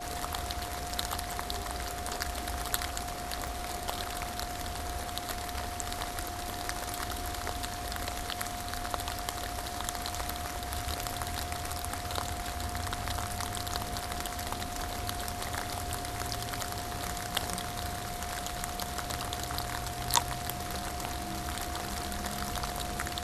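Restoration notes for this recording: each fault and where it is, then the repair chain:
tone 710 Hz -40 dBFS
3.47 pop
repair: de-click; notch 710 Hz, Q 30

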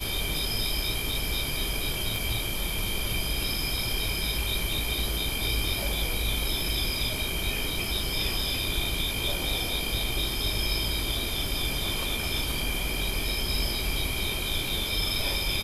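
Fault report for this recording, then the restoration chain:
2.16 pop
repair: de-click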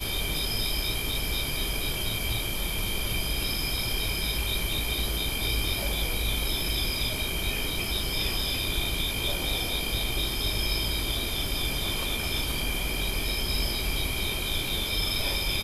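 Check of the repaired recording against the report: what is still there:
2.16 pop

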